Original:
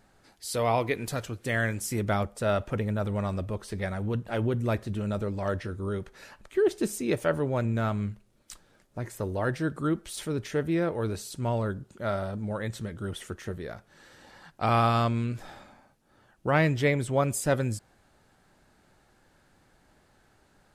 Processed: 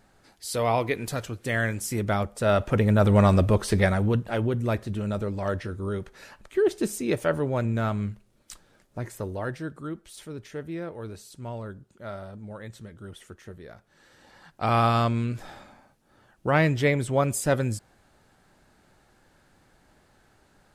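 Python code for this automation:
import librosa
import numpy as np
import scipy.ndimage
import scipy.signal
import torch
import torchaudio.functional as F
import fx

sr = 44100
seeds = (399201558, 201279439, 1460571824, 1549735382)

y = fx.gain(x, sr, db=fx.line((2.25, 1.5), (3.2, 12.0), (3.74, 12.0), (4.43, 1.5), (9.02, 1.5), (9.87, -7.5), (13.56, -7.5), (14.85, 2.0)))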